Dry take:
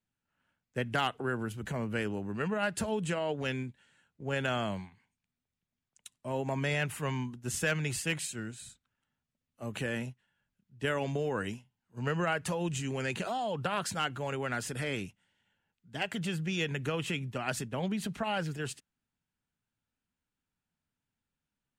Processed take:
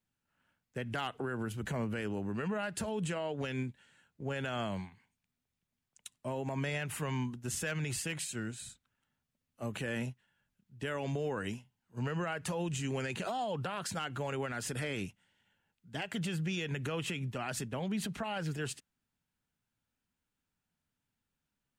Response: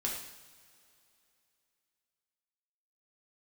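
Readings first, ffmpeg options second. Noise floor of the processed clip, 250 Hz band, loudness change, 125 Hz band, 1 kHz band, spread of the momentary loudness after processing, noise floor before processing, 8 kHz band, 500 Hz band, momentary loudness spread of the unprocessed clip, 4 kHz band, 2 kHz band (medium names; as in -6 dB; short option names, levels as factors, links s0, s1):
under -85 dBFS, -2.0 dB, -3.0 dB, -1.5 dB, -4.0 dB, 7 LU, under -85 dBFS, -1.5 dB, -3.5 dB, 10 LU, -3.5 dB, -4.5 dB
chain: -af "alimiter=level_in=1.78:limit=0.0631:level=0:latency=1:release=98,volume=0.562,volume=1.19"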